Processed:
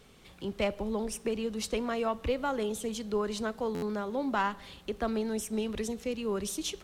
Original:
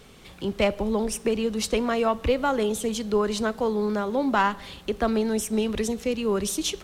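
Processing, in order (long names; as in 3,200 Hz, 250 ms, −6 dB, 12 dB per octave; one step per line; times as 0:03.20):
0:01.73–0:03.38: surface crackle 18 per second −52 dBFS
buffer that repeats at 0:03.74, samples 512, times 6
level −7.5 dB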